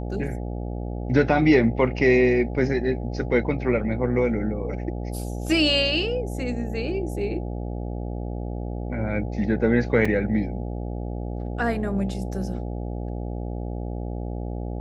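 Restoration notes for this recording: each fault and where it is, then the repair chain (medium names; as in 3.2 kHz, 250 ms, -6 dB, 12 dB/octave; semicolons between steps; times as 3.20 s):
buzz 60 Hz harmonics 14 -30 dBFS
10.05 s: dropout 4.5 ms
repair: de-hum 60 Hz, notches 14; interpolate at 10.05 s, 4.5 ms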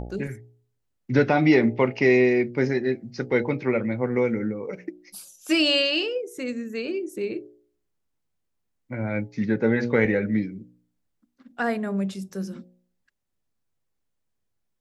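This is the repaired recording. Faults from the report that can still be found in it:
nothing left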